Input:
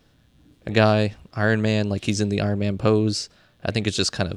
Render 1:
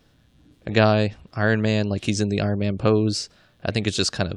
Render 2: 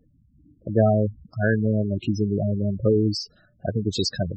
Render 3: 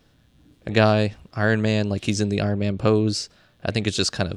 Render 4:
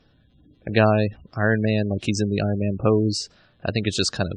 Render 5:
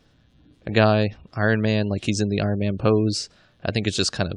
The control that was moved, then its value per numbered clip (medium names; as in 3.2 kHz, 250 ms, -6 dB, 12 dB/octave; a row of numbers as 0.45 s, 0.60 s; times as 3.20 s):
spectral gate, under each frame's peak: -45 dB, -10 dB, -60 dB, -25 dB, -35 dB